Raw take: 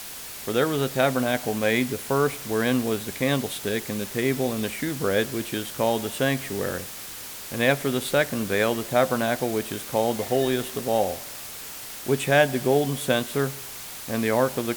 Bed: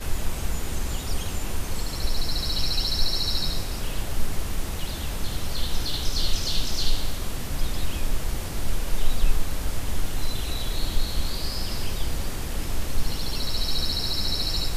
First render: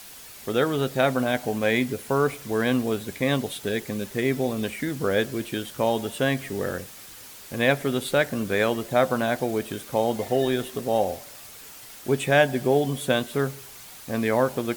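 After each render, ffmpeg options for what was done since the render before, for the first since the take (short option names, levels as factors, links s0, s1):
-af "afftdn=nr=7:nf=-38"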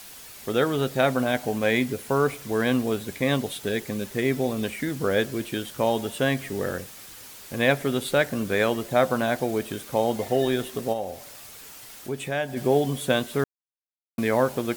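-filter_complex "[0:a]asplit=3[s0][s1][s2];[s0]afade=t=out:st=10.92:d=0.02[s3];[s1]acompressor=threshold=0.0112:ratio=1.5:attack=3.2:release=140:knee=1:detection=peak,afade=t=in:st=10.92:d=0.02,afade=t=out:st=12.56:d=0.02[s4];[s2]afade=t=in:st=12.56:d=0.02[s5];[s3][s4][s5]amix=inputs=3:normalize=0,asplit=3[s6][s7][s8];[s6]atrim=end=13.44,asetpts=PTS-STARTPTS,afade=t=out:st=13.436:d=0.004:c=hsin[s9];[s7]atrim=start=13.44:end=14.18,asetpts=PTS-STARTPTS,volume=0[s10];[s8]atrim=start=14.18,asetpts=PTS-STARTPTS,afade=t=in:d=0.004:c=hsin[s11];[s9][s10][s11]concat=n=3:v=0:a=1"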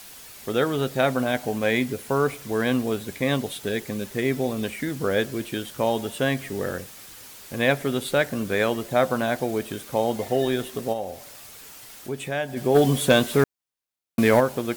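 -filter_complex "[0:a]asplit=3[s0][s1][s2];[s0]afade=t=out:st=12.74:d=0.02[s3];[s1]aeval=exprs='0.355*sin(PI/2*1.41*val(0)/0.355)':c=same,afade=t=in:st=12.74:d=0.02,afade=t=out:st=14.39:d=0.02[s4];[s2]afade=t=in:st=14.39:d=0.02[s5];[s3][s4][s5]amix=inputs=3:normalize=0"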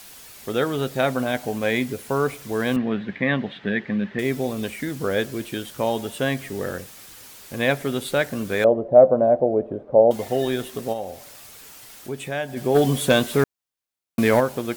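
-filter_complex "[0:a]asettb=1/sr,asplit=3[s0][s1][s2];[s0]atrim=end=2.764[s3];[s1]atrim=start=2.76:end=4.19,asetpts=PTS-STARTPTS,afade=t=in:d=0.004:c=qsin,afade=t=out:st=1.426:d=0.004:c=qsin,highpass=100,equalizer=f=200:t=q:w=4:g=10,equalizer=f=440:t=q:w=4:g=-3,equalizer=f=1800:t=q:w=4:g=10,lowpass=f=3300:w=0.5412,lowpass=f=3300:w=1.3066[s4];[s2]atrim=start=4.186[s5];[s3][s4]acrossfade=d=0.004:c1=hsin:c2=qsin[s6];[s6][s5]acrossfade=d=0.004:c1=qsin:c2=hsin,asettb=1/sr,asplit=3[s7][s8][s9];[s7]atrim=end=8.644[s10];[s8]atrim=start=8.64:end=10.11,asetpts=PTS-STARTPTS,afade=t=in:d=0.004:c=qsin,afade=t=out:st=1.466:d=0.004:c=qsin,lowpass=f=590:t=q:w=4[s11];[s9]atrim=start=10.106[s12];[s10][s11]acrossfade=d=0.004:c1=hsin:c2=qsin[s13];[s13][s12]acrossfade=d=0.004:c1=qsin:c2=hsin"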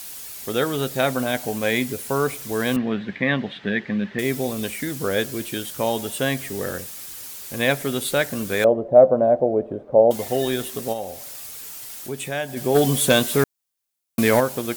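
-af "highshelf=f=4800:g=9.5"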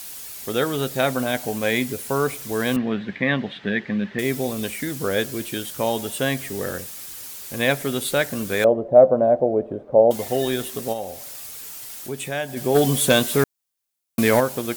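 -af anull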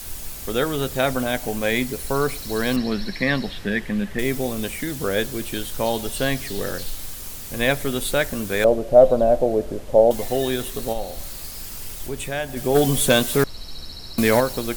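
-filter_complex "[1:a]volume=0.299[s0];[0:a][s0]amix=inputs=2:normalize=0"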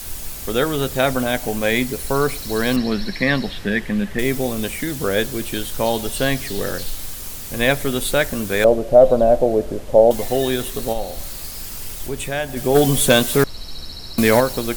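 -af "volume=1.41,alimiter=limit=0.891:level=0:latency=1"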